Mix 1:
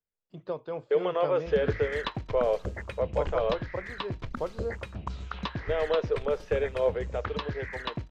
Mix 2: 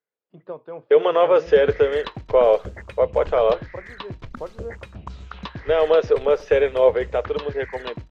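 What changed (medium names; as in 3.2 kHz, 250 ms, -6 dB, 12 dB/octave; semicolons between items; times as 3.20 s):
first voice: add band-pass 160–2300 Hz; second voice +10.5 dB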